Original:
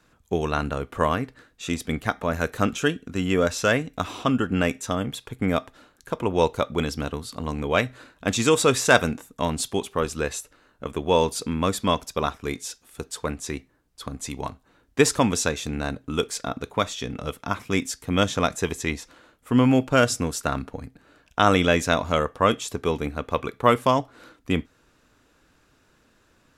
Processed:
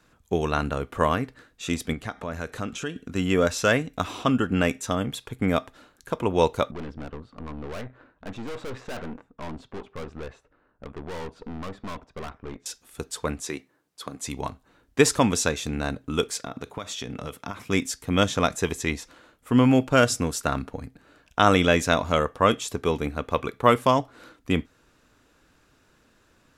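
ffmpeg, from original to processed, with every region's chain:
-filter_complex "[0:a]asettb=1/sr,asplit=3[a][b][c];[a]atrim=end=1.934[d];[b]atrim=start=1.93:end=2.96,asetpts=PTS-STARTPTS,afade=t=in:d=0.004:c=qsin,afade=t=out:st=1.026:d=0.004:c=qsin,acompressor=threshold=-33dB:ratio=2:attack=3.2:release=140:knee=1:detection=peak,lowpass=10k[e];[c]atrim=start=2.956[f];[d][e]acrossfade=d=0.004:c1=hsin:c2=qsin[g];[g][f]acrossfade=d=0.004:c1=qsin:c2=hsin,asettb=1/sr,asplit=3[h][i][j];[h]atrim=end=6.714[k];[i]atrim=start=6.71:end=12.66,asetpts=PTS-STARTPTS,afade=t=in:d=0.004:c=qsin,afade=t=out:st=5.946:d=0.004:c=qsin,lowpass=1.5k,aeval=exprs='(tanh(44.7*val(0)+0.8)-tanh(0.8))/44.7':c=same[l];[j]atrim=start=12.656[m];[k][l]acrossfade=d=0.004:c1=hsin:c2=qsin[n];[n][m]acrossfade=d=0.004:c1=qsin:c2=hsin,asettb=1/sr,asplit=3[o][p][q];[o]atrim=end=13.424[r];[p]atrim=start=13.42:end=14.27,asetpts=PTS-STARTPTS,afade=t=in:d=0.004:c=qsin,afade=t=out:st=0.846:d=0.004:c=qsin,highpass=190,bandreject=f=240:w=5.5[s];[q]atrim=start=14.266[t];[r][s]acrossfade=d=0.004:c1=hsin:c2=qsin[u];[u][t]acrossfade=d=0.004:c1=qsin:c2=hsin,asettb=1/sr,asplit=3[v][w][x];[v]atrim=end=16.364[y];[w]atrim=start=16.36:end=17.67,asetpts=PTS-STARTPTS,afade=t=in:d=0.004:c=qsin,afade=t=out:st=1.306:d=0.004:c=qsin,highpass=71,acompressor=threshold=-28dB:ratio=16:attack=3.2:release=140:knee=1:detection=peak[z];[x]atrim=start=17.666[aa];[y][z]acrossfade=d=0.004:c1=hsin:c2=qsin[ab];[ab][aa]acrossfade=d=0.004:c1=qsin:c2=hsin"

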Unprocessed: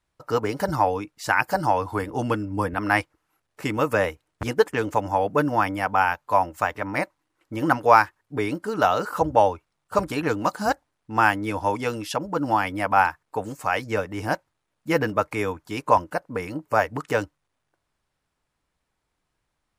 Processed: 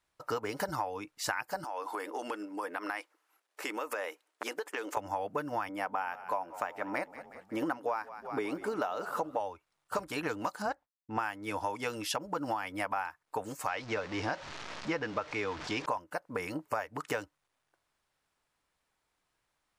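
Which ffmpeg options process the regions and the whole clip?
-filter_complex "[0:a]asettb=1/sr,asplit=3[a][b][c];[a]atrim=end=1.644[d];[b]atrim=start=1.64:end=4.97,asetpts=PTS-STARTPTS,afade=t=in:d=0.004:c=qsin,afade=t=out:st=3.326:d=0.004:c=qsin,highpass=f=310:w=0.5412,highpass=f=310:w=1.3066,acompressor=threshold=-30dB:ratio=5:attack=3.2:release=140:knee=1:detection=peak[e];[c]atrim=start=4.966[f];[d][e]acrossfade=d=0.004:c1=hsin:c2=qsin[g];[g][f]acrossfade=d=0.004:c1=qsin:c2=hsin,asettb=1/sr,asplit=3[h][i][j];[h]atrim=end=5.694[k];[i]atrim=start=5.69:end=9.4,asetpts=PTS-STARTPTS,afade=t=in:d=0.004:c=qsin,afade=t=out:st=3.706:d=0.004:c=qsin,highpass=220,tiltshelf=f=970:g=4,asplit=6[l][m][n][o][p][q];[m]adelay=183,afreqshift=-35,volume=-20dB[r];[n]adelay=366,afreqshift=-70,volume=-24.2dB[s];[o]adelay=549,afreqshift=-105,volume=-28.3dB[t];[p]adelay=732,afreqshift=-140,volume=-32.5dB[u];[q]adelay=915,afreqshift=-175,volume=-36.6dB[v];[l][r][s][t][u][v]amix=inputs=6:normalize=0,atrim=end_sample=163611[w];[j]atrim=start=9.396[x];[k][w]acrossfade=d=0.004:c1=hsin:c2=qsin[y];[y][x]acrossfade=d=0.004:c1=qsin:c2=hsin,asettb=1/sr,asplit=3[z][aa][ab];[z]atrim=end=10.624[ac];[aa]atrim=start=10.62:end=11.19,asetpts=PTS-STARTPTS,afade=t=in:d=0.004:c=qsin,afade=t=out:st=0.566:d=0.004:c=qsin,aemphasis=mode=reproduction:type=75kf,agate=range=-33dB:threshold=-57dB:ratio=3:release=100:detection=peak[ad];[ab]atrim=start=11.186[ae];[ac][ad]acrossfade=d=0.004:c1=hsin:c2=qsin[af];[af][ae]acrossfade=d=0.004:c1=qsin:c2=hsin,asettb=1/sr,asplit=3[ag][ah][ai];[ag]atrim=end=13.684[aj];[ah]atrim=start=13.68:end=15.86,asetpts=PTS-STARTPTS,afade=t=in:d=0.004:c=qsin,afade=t=out:st=2.176:d=0.004:c=qsin,aeval=exprs='val(0)+0.5*0.0266*sgn(val(0))':c=same,lowpass=f=5.9k:w=0.5412,lowpass=f=5.9k:w=1.3066[ak];[ai]atrim=start=15.856[al];[aj][ak]acrossfade=d=0.004:c1=hsin:c2=qsin[am];[am][al]acrossfade=d=0.004:c1=qsin:c2=hsin,lowshelf=f=330:g=-10,acompressor=threshold=-30dB:ratio=12"

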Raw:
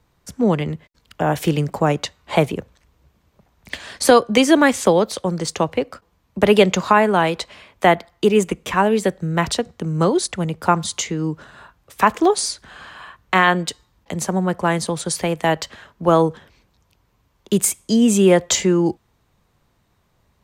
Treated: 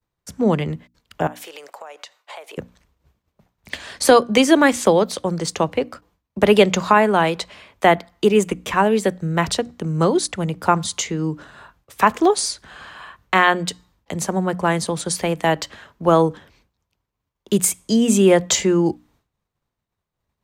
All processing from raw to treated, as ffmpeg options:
-filter_complex "[0:a]asettb=1/sr,asplit=3[a][b][c];[a]atrim=end=1.274[d];[b]atrim=start=1.27:end=2.58,asetpts=PTS-STARTPTS,afade=t=in:d=0.004:c=qsin,afade=t=out:st=1.306:d=0.004:c=qsin,highpass=f=540:w=0.5412,highpass=f=540:w=1.3066,acompressor=threshold=-33dB:ratio=10:attack=3.2:release=140:knee=1:detection=peak[e];[c]atrim=start=2.576[f];[d][e]acrossfade=d=0.004:c1=hsin:c2=qsin[g];[g][f]acrossfade=d=0.004:c1=qsin:c2=hsin,agate=range=-33dB:threshold=-51dB:ratio=3:detection=peak,bandreject=f=60:t=h:w=6,bandreject=f=120:t=h:w=6,bandreject=f=180:t=h:w=6,bandreject=f=240:t=h:w=6,bandreject=f=300:t=h:w=6"

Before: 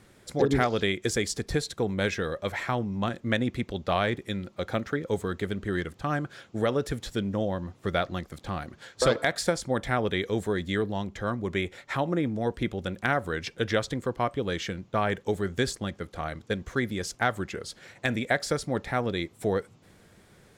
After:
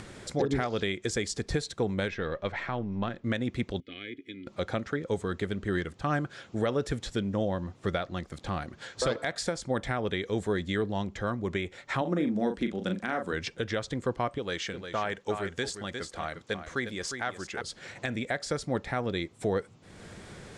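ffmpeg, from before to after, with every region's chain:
-filter_complex "[0:a]asettb=1/sr,asplit=3[a][b][c];[a]atrim=end=2.084[d];[b]atrim=start=2.08:end=3.24,asetpts=PTS-STARTPTS,afade=t=in:d=0.004:c=qsin,afade=t=out:st=1.156:d=0.004:c=qsin,aeval=exprs='if(lt(val(0),0),0.708*val(0),val(0))':c=same,lowpass=3.8k[e];[c]atrim=start=3.236[f];[d][e]acrossfade=d=0.004:c1=hsin:c2=qsin[g];[g][f]acrossfade=d=0.004:c1=qsin:c2=hsin,asettb=1/sr,asplit=3[h][i][j];[h]atrim=end=3.804[k];[i]atrim=start=3.8:end=4.47,asetpts=PTS-STARTPTS,afade=t=in:d=0.004:c=qsin,afade=t=out:st=0.666:d=0.004:c=qsin,asplit=3[l][m][n];[l]bandpass=f=270:t=q:w=8,volume=0dB[o];[m]bandpass=f=2.29k:t=q:w=8,volume=-6dB[p];[n]bandpass=f=3.01k:t=q:w=8,volume=-9dB[q];[o][p][q]amix=inputs=3:normalize=0,aecho=1:1:2.4:0.53,atrim=end_sample=29547[r];[j]atrim=start=4.466[s];[k][r]acrossfade=d=0.004:c1=hsin:c2=qsin[t];[t][s]acrossfade=d=0.004:c1=qsin:c2=hsin,asettb=1/sr,asplit=3[u][v][w];[u]atrim=end=12.014[x];[v]atrim=start=12.01:end=13.33,asetpts=PTS-STARTPTS,afade=t=in:d=0.004:c=qsin,afade=t=out:st=1.316:d=0.004:c=qsin,lowshelf=f=160:t=q:w=3:g=-6.5,asplit=2[y][z];[z]adelay=39,volume=-7dB[aa];[y][aa]amix=inputs=2:normalize=0,atrim=end_sample=58212[ab];[w]atrim=start=13.326[ac];[x][ab]acrossfade=d=0.004:c1=hsin:c2=qsin[ad];[ad][ac]acrossfade=d=0.004:c1=qsin:c2=hsin,asettb=1/sr,asplit=3[ae][af][ag];[ae]atrim=end=14.384[ah];[af]atrim=start=14.38:end=17.61,asetpts=PTS-STARTPTS,afade=t=in:d=0.004:c=qsin,afade=t=out:st=3.226:d=0.004:c=qsin,lowshelf=f=360:g=-9,aecho=1:1:355:0.355,atrim=end_sample=142443[ai];[ag]atrim=start=17.606[aj];[ah][ai]acrossfade=d=0.004:c1=hsin:c2=qsin[ak];[ak][aj]acrossfade=d=0.004:c1=qsin:c2=hsin,lowpass=f=9.3k:w=0.5412,lowpass=f=9.3k:w=1.3066,acompressor=mode=upward:threshold=-35dB:ratio=2.5,alimiter=limit=-17.5dB:level=0:latency=1:release=285"

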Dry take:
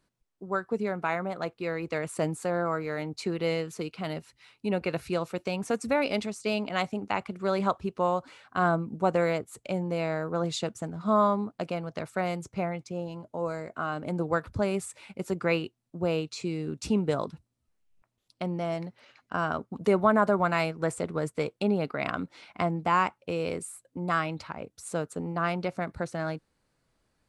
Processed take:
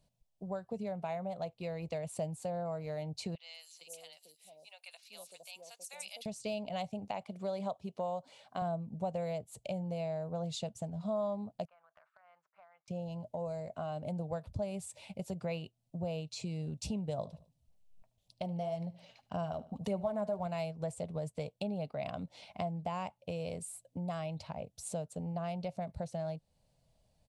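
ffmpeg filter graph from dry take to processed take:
-filter_complex "[0:a]asettb=1/sr,asplit=3[a][b][c];[a]atrim=end=3.354[d];[b]atrim=start=3.35:end=6.26,asetpts=PTS-STARTPTS,afade=t=in:d=0.004:c=qsin,afade=t=out:st=2.906:d=0.004:c=qsin,highpass=260,aderivative,acrossover=split=740|5600[e][f][g];[g]adelay=190[h];[e]adelay=460[i];[i][f][h]amix=inputs=3:normalize=0,atrim=end_sample=128331[j];[c]atrim=start=6.256[k];[d][j]acrossfade=d=0.004:c1=hsin:c2=qsin[l];[l][k]acrossfade=d=0.004:c1=qsin:c2=hsin,asettb=1/sr,asplit=3[m][n][o];[m]atrim=end=7.114[p];[n]atrim=start=7.11:end=8.62,asetpts=PTS-STARTPTS,afade=t=in:d=0.004:c=qsin,afade=t=out:st=1.506:d=0.004:c=qsin,highpass=190,bandreject=f=2.7k:w=17[q];[o]atrim=start=8.616[r];[p][q]acrossfade=d=0.004:c1=hsin:c2=qsin[s];[s][r]acrossfade=d=0.004:c1=qsin:c2=hsin,asettb=1/sr,asplit=3[t][u][v];[t]atrim=end=11.654[w];[u]atrim=start=11.65:end=12.88,asetpts=PTS-STARTPTS,afade=t=in:d=0.004:c=qsin,afade=t=out:st=1.226:d=0.004:c=qsin,asuperpass=centerf=1400:order=4:qfactor=2.6,acompressor=threshold=-49dB:ratio=16:attack=3.2:release=140:knee=1:detection=peak[x];[v]atrim=start=12.876[y];[w][x]acrossfade=d=0.004:c1=hsin:c2=qsin[z];[z][y]acrossfade=d=0.004:c1=qsin:c2=hsin,asettb=1/sr,asplit=3[aa][ab][ac];[aa]atrim=end=17.184[ad];[ab]atrim=start=17.18:end=20.47,asetpts=PTS-STARTPTS,afade=t=in:d=0.004:c=qsin,afade=t=out:st=3.286:d=0.004:c=qsin,aphaser=in_gain=1:out_gain=1:delay=4.5:decay=0.38:speed=1.8:type=sinusoidal,aecho=1:1:75|150|225:0.1|0.032|0.0102,atrim=end_sample=145089[ae];[ac]atrim=start=20.466[af];[ad][ae]acrossfade=d=0.004:c1=hsin:c2=qsin[ag];[ag][af]acrossfade=d=0.004:c1=qsin:c2=hsin,firequalizer=gain_entry='entry(160,0);entry(330,-16);entry(620,2);entry(1300,-20);entry(2900,-5)':delay=0.05:min_phase=1,acompressor=threshold=-43dB:ratio=2.5,volume=4dB"

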